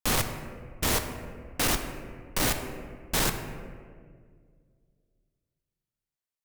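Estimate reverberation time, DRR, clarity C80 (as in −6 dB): 1.9 s, 6.0 dB, 9.0 dB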